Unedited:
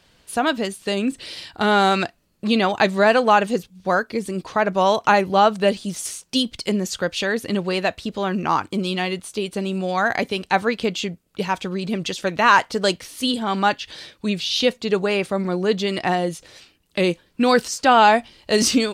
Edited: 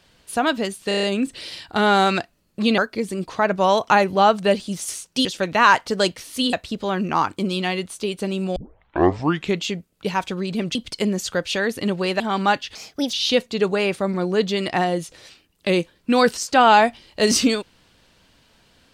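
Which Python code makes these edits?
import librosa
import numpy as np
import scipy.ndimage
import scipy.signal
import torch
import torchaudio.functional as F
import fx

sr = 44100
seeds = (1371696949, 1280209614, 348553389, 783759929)

y = fx.edit(x, sr, fx.stutter(start_s=0.88, slice_s=0.03, count=6),
    fx.cut(start_s=2.63, length_s=1.32),
    fx.swap(start_s=6.42, length_s=1.45, other_s=12.09, other_length_s=1.28),
    fx.tape_start(start_s=9.9, length_s=1.07),
    fx.speed_span(start_s=13.92, length_s=0.52, speed=1.36), tone=tone)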